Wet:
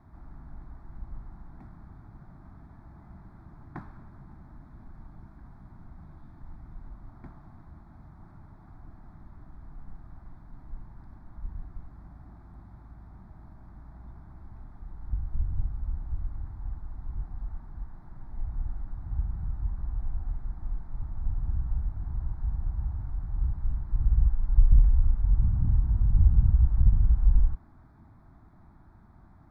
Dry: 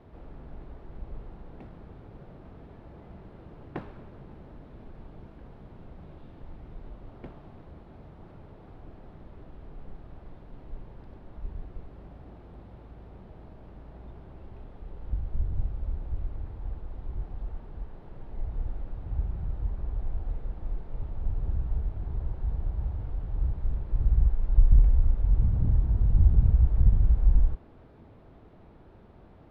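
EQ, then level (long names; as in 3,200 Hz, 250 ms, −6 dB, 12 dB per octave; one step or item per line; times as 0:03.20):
notch filter 390 Hz, Q 12
phaser with its sweep stopped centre 1,200 Hz, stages 4
0.0 dB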